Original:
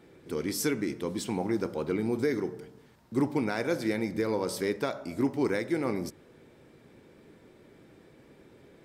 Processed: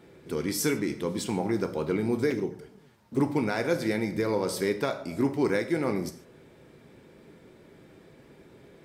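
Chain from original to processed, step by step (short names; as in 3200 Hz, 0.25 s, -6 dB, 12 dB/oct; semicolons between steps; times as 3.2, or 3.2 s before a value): 2.3–3.2 envelope flanger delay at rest 11.7 ms, full sweep at -27.5 dBFS; non-linear reverb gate 0.17 s falling, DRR 8.5 dB; gain +2 dB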